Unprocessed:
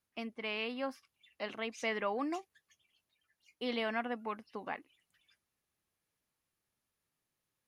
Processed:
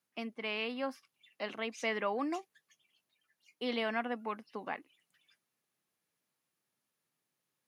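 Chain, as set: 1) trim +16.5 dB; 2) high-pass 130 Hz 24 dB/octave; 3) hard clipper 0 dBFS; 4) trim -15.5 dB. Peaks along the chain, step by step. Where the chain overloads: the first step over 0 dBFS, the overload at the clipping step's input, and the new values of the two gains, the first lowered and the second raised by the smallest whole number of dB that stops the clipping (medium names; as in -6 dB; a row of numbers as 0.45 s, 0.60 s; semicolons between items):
-6.0 dBFS, -4.0 dBFS, -4.0 dBFS, -19.5 dBFS; nothing clips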